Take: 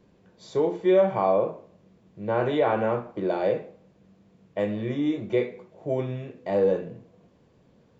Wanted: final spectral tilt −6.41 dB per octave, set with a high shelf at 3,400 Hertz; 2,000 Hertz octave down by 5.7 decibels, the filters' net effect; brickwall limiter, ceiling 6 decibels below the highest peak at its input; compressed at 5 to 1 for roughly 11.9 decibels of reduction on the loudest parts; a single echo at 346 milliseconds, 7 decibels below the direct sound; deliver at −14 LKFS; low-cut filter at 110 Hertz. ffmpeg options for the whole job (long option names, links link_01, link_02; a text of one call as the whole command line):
ffmpeg -i in.wav -af "highpass=110,equalizer=frequency=2000:width_type=o:gain=-6.5,highshelf=frequency=3400:gain=-4,acompressor=threshold=-30dB:ratio=5,alimiter=level_in=3dB:limit=-24dB:level=0:latency=1,volume=-3dB,aecho=1:1:346:0.447,volume=23dB" out.wav